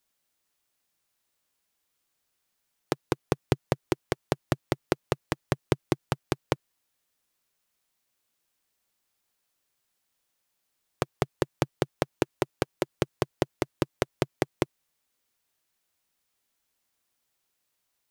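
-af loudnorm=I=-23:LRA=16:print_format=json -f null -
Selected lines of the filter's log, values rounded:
"input_i" : "-31.9",
"input_tp" : "-4.2",
"input_lra" : "7.4",
"input_thresh" : "-41.9",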